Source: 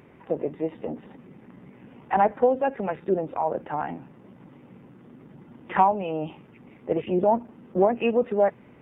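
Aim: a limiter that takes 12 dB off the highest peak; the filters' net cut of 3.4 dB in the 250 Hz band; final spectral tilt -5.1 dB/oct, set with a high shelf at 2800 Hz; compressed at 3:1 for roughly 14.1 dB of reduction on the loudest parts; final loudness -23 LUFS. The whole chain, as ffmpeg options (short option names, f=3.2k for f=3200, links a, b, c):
-af "equalizer=f=250:t=o:g=-5,highshelf=f=2.8k:g=5,acompressor=threshold=-35dB:ratio=3,volume=20.5dB,alimiter=limit=-10.5dB:level=0:latency=1"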